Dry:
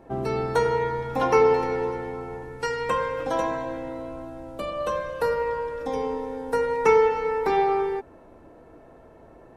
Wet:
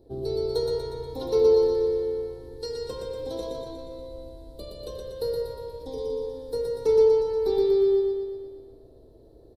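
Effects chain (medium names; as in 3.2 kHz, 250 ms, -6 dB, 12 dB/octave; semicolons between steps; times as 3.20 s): FFT filter 110 Hz 0 dB, 170 Hz -13 dB, 420 Hz -1 dB, 720 Hz -16 dB, 1.3 kHz -26 dB, 2.6 kHz -25 dB, 4.1 kHz +6 dB, 6.3 kHz -11 dB, 12 kHz 0 dB; feedback delay 120 ms, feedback 59%, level -3 dB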